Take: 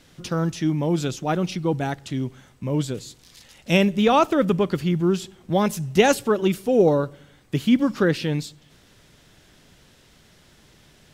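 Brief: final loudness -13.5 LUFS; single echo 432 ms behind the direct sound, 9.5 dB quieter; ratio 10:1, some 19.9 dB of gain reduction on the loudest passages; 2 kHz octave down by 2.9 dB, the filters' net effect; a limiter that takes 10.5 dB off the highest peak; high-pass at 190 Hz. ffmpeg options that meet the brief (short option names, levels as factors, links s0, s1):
-af "highpass=190,equalizer=f=2000:t=o:g=-4,acompressor=threshold=0.02:ratio=10,alimiter=level_in=2.11:limit=0.0631:level=0:latency=1,volume=0.473,aecho=1:1:432:0.335,volume=23.7"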